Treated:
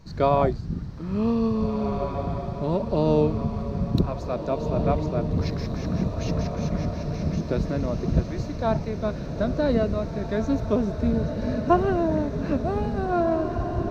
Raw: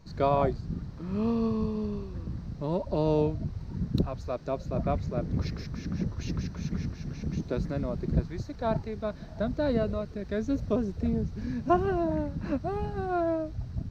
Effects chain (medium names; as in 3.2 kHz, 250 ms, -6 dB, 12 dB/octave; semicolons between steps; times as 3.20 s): echo that smears into a reverb 1819 ms, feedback 53%, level -7 dB; trim +4.5 dB